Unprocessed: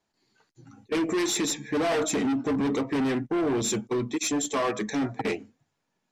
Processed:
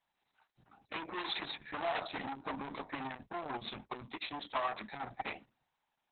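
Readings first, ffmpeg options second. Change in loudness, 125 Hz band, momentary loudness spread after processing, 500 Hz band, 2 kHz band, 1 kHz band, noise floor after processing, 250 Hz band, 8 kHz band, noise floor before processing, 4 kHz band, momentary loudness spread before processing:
−13.5 dB, −17.5 dB, 8 LU, −15.5 dB, −7.5 dB, −5.5 dB, −85 dBFS, −21.0 dB, below −40 dB, −79 dBFS, −8.0 dB, 4 LU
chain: -af "lowshelf=frequency=600:width_type=q:width=3:gain=-8,acrusher=bits=4:mode=log:mix=0:aa=0.000001,volume=-7dB" -ar 48000 -c:a libopus -b:a 6k

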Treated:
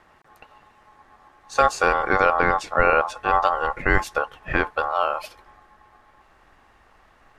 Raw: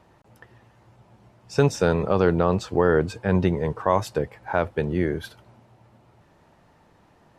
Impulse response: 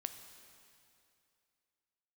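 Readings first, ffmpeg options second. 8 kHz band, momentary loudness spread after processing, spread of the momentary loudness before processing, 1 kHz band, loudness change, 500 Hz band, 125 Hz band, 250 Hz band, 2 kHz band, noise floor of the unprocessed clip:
+1.5 dB, 7 LU, 9 LU, +8.5 dB, +2.0 dB, −2.0 dB, −10.5 dB, −8.0 dB, +10.0 dB, −58 dBFS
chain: -af "aeval=exprs='val(0)*sin(2*PI*960*n/s)':channel_layout=same,asubboost=boost=3.5:cutoff=66,volume=4dB"

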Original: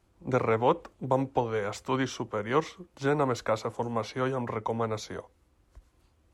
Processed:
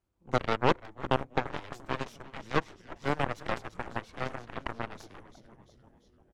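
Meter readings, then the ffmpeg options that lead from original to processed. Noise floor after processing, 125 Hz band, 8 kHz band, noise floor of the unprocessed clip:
−65 dBFS, −4.0 dB, −9.5 dB, −67 dBFS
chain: -filter_complex "[0:a]asplit=9[link_01][link_02][link_03][link_04][link_05][link_06][link_07][link_08][link_09];[link_02]adelay=343,afreqshift=-120,volume=-7.5dB[link_10];[link_03]adelay=686,afreqshift=-240,volume=-12.1dB[link_11];[link_04]adelay=1029,afreqshift=-360,volume=-16.7dB[link_12];[link_05]adelay=1372,afreqshift=-480,volume=-21.2dB[link_13];[link_06]adelay=1715,afreqshift=-600,volume=-25.8dB[link_14];[link_07]adelay=2058,afreqshift=-720,volume=-30.4dB[link_15];[link_08]adelay=2401,afreqshift=-840,volume=-35dB[link_16];[link_09]adelay=2744,afreqshift=-960,volume=-39.6dB[link_17];[link_01][link_10][link_11][link_12][link_13][link_14][link_15][link_16][link_17]amix=inputs=9:normalize=0,aeval=exprs='0.316*(cos(1*acos(clip(val(0)/0.316,-1,1)))-cos(1*PI/2))+0.0708*(cos(4*acos(clip(val(0)/0.316,-1,1)))-cos(4*PI/2))+0.0562*(cos(7*acos(clip(val(0)/0.316,-1,1)))-cos(7*PI/2))':channel_layout=same,volume=-2.5dB"

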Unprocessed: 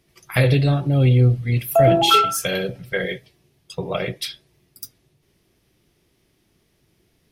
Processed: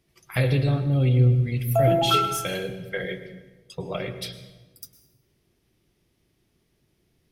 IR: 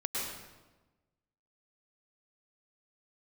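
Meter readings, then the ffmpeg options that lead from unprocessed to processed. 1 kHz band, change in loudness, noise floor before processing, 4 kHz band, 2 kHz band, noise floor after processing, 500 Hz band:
−6.0 dB, −4.5 dB, −65 dBFS, −6.5 dB, −6.5 dB, −70 dBFS, −5.5 dB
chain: -filter_complex "[0:a]asplit=2[link_01][link_02];[1:a]atrim=start_sample=2205,lowshelf=frequency=320:gain=10[link_03];[link_02][link_03]afir=irnorm=-1:irlink=0,volume=-14.5dB[link_04];[link_01][link_04]amix=inputs=2:normalize=0,volume=-8dB"

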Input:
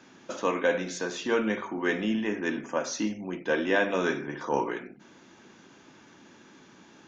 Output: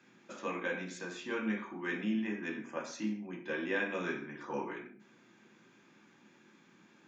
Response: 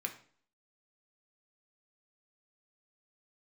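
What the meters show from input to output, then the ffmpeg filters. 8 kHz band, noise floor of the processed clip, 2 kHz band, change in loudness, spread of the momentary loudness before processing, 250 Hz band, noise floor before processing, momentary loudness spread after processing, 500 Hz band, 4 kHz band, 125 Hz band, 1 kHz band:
can't be measured, −64 dBFS, −7.0 dB, −8.5 dB, 8 LU, −6.5 dB, −55 dBFS, 9 LU, −11.5 dB, −10.5 dB, −6.0 dB, −10.5 dB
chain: -filter_complex "[1:a]atrim=start_sample=2205,afade=type=out:start_time=0.21:duration=0.01,atrim=end_sample=9702[link_01];[0:a][link_01]afir=irnorm=-1:irlink=0,volume=-8.5dB"

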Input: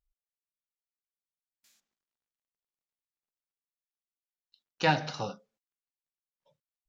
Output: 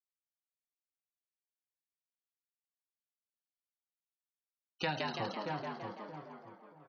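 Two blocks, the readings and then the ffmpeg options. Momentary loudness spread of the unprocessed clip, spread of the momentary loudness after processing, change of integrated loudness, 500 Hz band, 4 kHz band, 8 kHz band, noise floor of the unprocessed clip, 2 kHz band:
11 LU, 16 LU, −9.0 dB, −5.0 dB, −5.0 dB, can't be measured, below −85 dBFS, −7.0 dB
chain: -filter_complex "[0:a]afftfilt=real='re*gte(hypot(re,im),0.0158)':imag='im*gte(hypot(re,im),0.0158)':win_size=1024:overlap=0.75,asplit=2[link_01][link_02];[link_02]adelay=627,lowpass=frequency=920:poles=1,volume=-10dB,asplit=2[link_03][link_04];[link_04]adelay=627,lowpass=frequency=920:poles=1,volume=0.27,asplit=2[link_05][link_06];[link_06]adelay=627,lowpass=frequency=920:poles=1,volume=0.27[link_07];[link_03][link_05][link_07]amix=inputs=3:normalize=0[link_08];[link_01][link_08]amix=inputs=2:normalize=0,acrossover=split=700|3300[link_09][link_10][link_11];[link_09]acompressor=threshold=-39dB:ratio=4[link_12];[link_10]acompressor=threshold=-38dB:ratio=4[link_13];[link_11]acompressor=threshold=-41dB:ratio=4[link_14];[link_12][link_13][link_14]amix=inputs=3:normalize=0,highshelf=frequency=6300:gain=-10.5,asplit=2[link_15][link_16];[link_16]asplit=8[link_17][link_18][link_19][link_20][link_21][link_22][link_23][link_24];[link_17]adelay=167,afreqshift=94,volume=-3.5dB[link_25];[link_18]adelay=334,afreqshift=188,volume=-8.1dB[link_26];[link_19]adelay=501,afreqshift=282,volume=-12.7dB[link_27];[link_20]adelay=668,afreqshift=376,volume=-17.2dB[link_28];[link_21]adelay=835,afreqshift=470,volume=-21.8dB[link_29];[link_22]adelay=1002,afreqshift=564,volume=-26.4dB[link_30];[link_23]adelay=1169,afreqshift=658,volume=-31dB[link_31];[link_24]adelay=1336,afreqshift=752,volume=-35.6dB[link_32];[link_25][link_26][link_27][link_28][link_29][link_30][link_31][link_32]amix=inputs=8:normalize=0[link_33];[link_15][link_33]amix=inputs=2:normalize=0"

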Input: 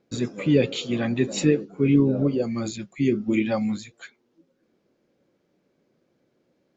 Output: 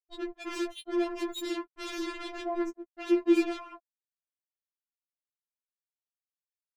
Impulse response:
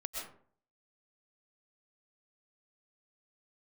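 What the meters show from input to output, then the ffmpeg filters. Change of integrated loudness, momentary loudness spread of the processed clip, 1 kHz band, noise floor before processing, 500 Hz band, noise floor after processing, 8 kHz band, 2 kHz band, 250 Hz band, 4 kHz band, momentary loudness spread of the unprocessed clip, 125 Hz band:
−8.0 dB, 14 LU, 0.0 dB, −70 dBFS, −7.5 dB, below −85 dBFS, can't be measured, −6.5 dB, −8.5 dB, −6.5 dB, 11 LU, below −40 dB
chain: -filter_complex "[0:a]bandreject=frequency=60:width_type=h:width=6,bandreject=frequency=120:width_type=h:width=6,bandreject=frequency=180:width_type=h:width=6,bandreject=frequency=240:width_type=h:width=6,bandreject=frequency=300:width_type=h:width=6,bandreject=frequency=360:width_type=h:width=6,afftfilt=real='re*gte(hypot(re,im),0.1)':imag='im*gte(hypot(re,im),0.1)':win_size=1024:overlap=0.75,lowshelf=frequency=420:gain=-3,acrossover=split=430[link_01][link_02];[link_02]alimiter=level_in=4dB:limit=-24dB:level=0:latency=1:release=20,volume=-4dB[link_03];[link_01][link_03]amix=inputs=2:normalize=0,asplit=2[link_04][link_05];[link_05]adelay=90,highpass=300,lowpass=3400,asoftclip=type=hard:threshold=-20dB,volume=-25dB[link_06];[link_04][link_06]amix=inputs=2:normalize=0,acrusher=bits=4:mix=0:aa=0.5,afftfilt=real='re*4*eq(mod(b,16),0)':imag='im*4*eq(mod(b,16),0)':win_size=2048:overlap=0.75"

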